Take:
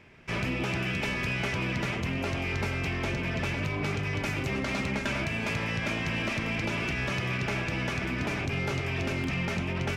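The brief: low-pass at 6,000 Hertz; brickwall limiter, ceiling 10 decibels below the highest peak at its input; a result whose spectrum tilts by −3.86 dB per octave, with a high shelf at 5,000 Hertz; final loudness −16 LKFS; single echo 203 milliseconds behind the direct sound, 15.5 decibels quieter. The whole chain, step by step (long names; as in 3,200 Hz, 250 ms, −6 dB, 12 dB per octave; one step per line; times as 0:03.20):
low-pass filter 6,000 Hz
high-shelf EQ 5,000 Hz +8.5 dB
brickwall limiter −30.5 dBFS
single-tap delay 203 ms −15.5 dB
level +21 dB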